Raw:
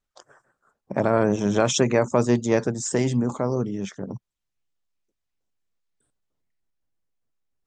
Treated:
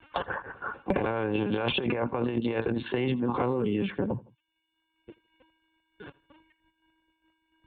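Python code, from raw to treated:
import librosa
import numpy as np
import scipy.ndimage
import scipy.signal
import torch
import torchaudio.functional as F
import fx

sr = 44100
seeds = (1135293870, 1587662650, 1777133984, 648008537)

y = fx.wiener(x, sr, points=9)
y = fx.lpc_vocoder(y, sr, seeds[0], excitation='pitch_kept', order=16)
y = fx.peak_eq(y, sr, hz=2700.0, db=10.0, octaves=0.21)
y = fx.notch_comb(y, sr, f0_hz=640.0)
y = fx.over_compress(y, sr, threshold_db=-28.0, ratio=-1.0)
y = fx.highpass(y, sr, hz=92.0, slope=6)
y = fx.low_shelf(y, sr, hz=440.0, db=-5.0)
y = fx.echo_feedback(y, sr, ms=81, feedback_pct=33, wet_db=-23.5)
y = fx.band_squash(y, sr, depth_pct=100)
y = y * librosa.db_to_amplitude(3.5)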